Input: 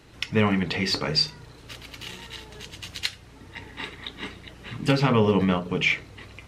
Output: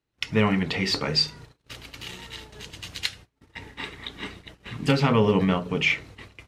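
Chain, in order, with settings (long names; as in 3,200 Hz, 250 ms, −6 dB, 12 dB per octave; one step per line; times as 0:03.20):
noise gate −43 dBFS, range −30 dB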